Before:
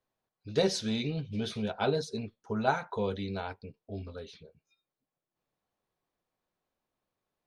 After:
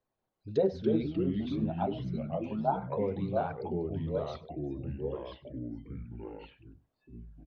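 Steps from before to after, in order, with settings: formant sharpening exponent 1.5; treble ducked by the level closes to 1300 Hz, closed at -27.5 dBFS; 1.06–2.82 fixed phaser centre 470 Hz, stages 6; echoes that change speed 0.179 s, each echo -3 st, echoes 3; outdoor echo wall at 17 m, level -21 dB

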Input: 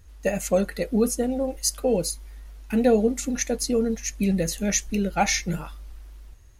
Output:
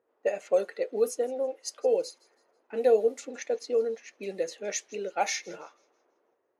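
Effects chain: low-pass opened by the level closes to 940 Hz, open at -16.5 dBFS; ladder high-pass 370 Hz, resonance 45%; thin delay 0.163 s, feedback 37%, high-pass 2500 Hz, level -22 dB; gain +1.5 dB

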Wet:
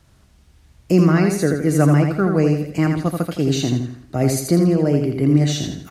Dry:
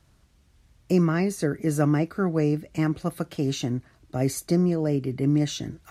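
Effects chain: on a send: feedback echo 82 ms, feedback 38%, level -5 dB; on the sum: gain +6 dB

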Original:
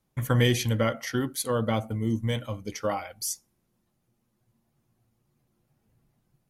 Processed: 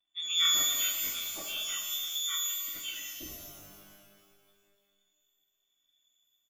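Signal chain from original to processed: pitch shift by moving bins -6.5 st; bell 280 Hz -12.5 dB 2.7 oct; comb 2.5 ms, depth 67%; inverted band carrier 3500 Hz; shimmer reverb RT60 1.8 s, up +12 st, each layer -2 dB, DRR 2.5 dB; gain -6 dB

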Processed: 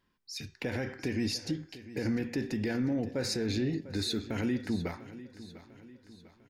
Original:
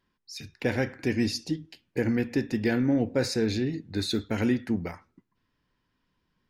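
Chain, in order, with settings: de-hum 386.3 Hz, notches 20; limiter -23 dBFS, peak gain reduction 10 dB; on a send: feedback echo 0.698 s, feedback 48%, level -16 dB

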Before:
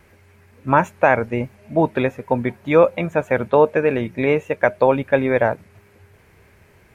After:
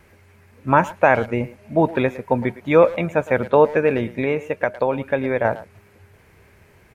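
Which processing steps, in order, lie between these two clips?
4.13–5.45 compressor 2:1, threshold -20 dBFS, peak gain reduction 6 dB; speakerphone echo 0.11 s, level -16 dB

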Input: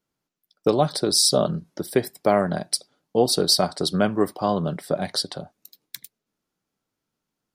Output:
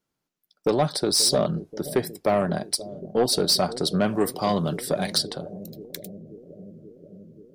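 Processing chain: 4.07–5.18 high shelf 2600 Hz +10.5 dB; soft clip -12.5 dBFS, distortion -15 dB; analogue delay 0.531 s, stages 2048, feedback 76%, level -15 dB

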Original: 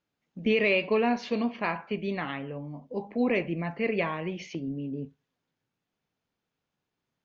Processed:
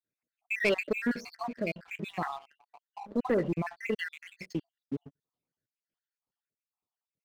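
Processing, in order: random spectral dropouts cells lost 69%; sample leveller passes 2; gain -4.5 dB

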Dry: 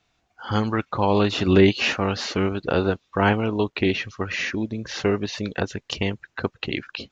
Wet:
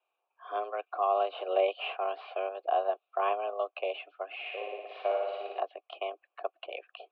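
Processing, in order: mistuned SSB +190 Hz 160–3500 Hz; vowel filter a; 4.4–5.6 flutter echo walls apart 9.8 m, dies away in 1.3 s

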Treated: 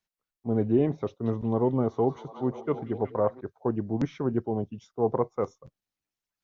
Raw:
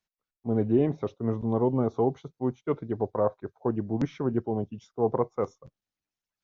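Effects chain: 1.06–3.41 delay with a stepping band-pass 0.186 s, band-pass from 3600 Hz, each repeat -0.7 oct, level -3.5 dB

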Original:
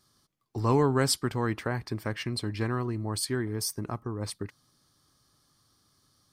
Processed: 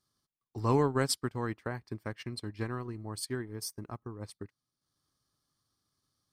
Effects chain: transient shaper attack +1 dB, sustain -8 dB; upward expander 1.5:1, over -42 dBFS; gain -2.5 dB

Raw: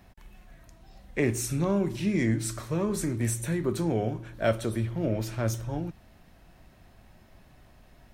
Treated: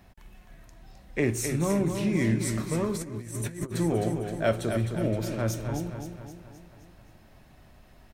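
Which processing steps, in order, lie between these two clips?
feedback echo 0.261 s, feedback 52%, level -7 dB; 2.93–3.74 negative-ratio compressor -33 dBFS, ratio -0.5

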